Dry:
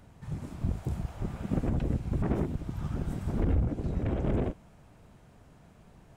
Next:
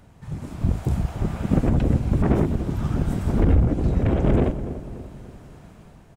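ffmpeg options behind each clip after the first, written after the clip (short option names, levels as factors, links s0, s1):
-filter_complex "[0:a]dynaudnorm=f=150:g=7:m=2,asplit=2[s0][s1];[s1]adelay=290,lowpass=f=1200:p=1,volume=0.266,asplit=2[s2][s3];[s3]adelay=290,lowpass=f=1200:p=1,volume=0.49,asplit=2[s4][s5];[s5]adelay=290,lowpass=f=1200:p=1,volume=0.49,asplit=2[s6][s7];[s7]adelay=290,lowpass=f=1200:p=1,volume=0.49,asplit=2[s8][s9];[s9]adelay=290,lowpass=f=1200:p=1,volume=0.49[s10];[s0][s2][s4][s6][s8][s10]amix=inputs=6:normalize=0,volume=1.5"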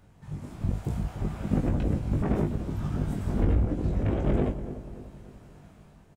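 -filter_complex "[0:a]asplit=2[s0][s1];[s1]adelay=20,volume=0.562[s2];[s0][s2]amix=inputs=2:normalize=0,volume=0.422"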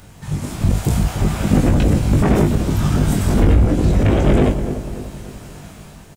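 -filter_complex "[0:a]asplit=2[s0][s1];[s1]alimiter=limit=0.0708:level=0:latency=1:release=12,volume=1.19[s2];[s0][s2]amix=inputs=2:normalize=0,highshelf=f=2600:g=11.5,volume=2.24"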